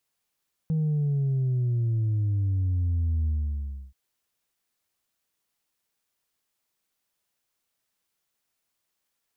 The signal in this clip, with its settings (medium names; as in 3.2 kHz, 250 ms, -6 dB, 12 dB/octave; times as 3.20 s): sub drop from 160 Hz, over 3.23 s, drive 1.5 dB, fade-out 0.66 s, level -22.5 dB